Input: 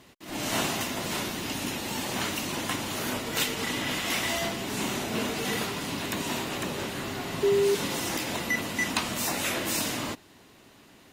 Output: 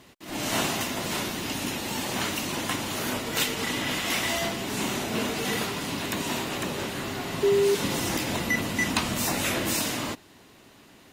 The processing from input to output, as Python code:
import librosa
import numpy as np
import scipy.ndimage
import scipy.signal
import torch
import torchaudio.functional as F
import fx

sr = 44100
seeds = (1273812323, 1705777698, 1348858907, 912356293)

y = fx.low_shelf(x, sr, hz=210.0, db=7.0, at=(7.84, 9.74))
y = y * 10.0 ** (1.5 / 20.0)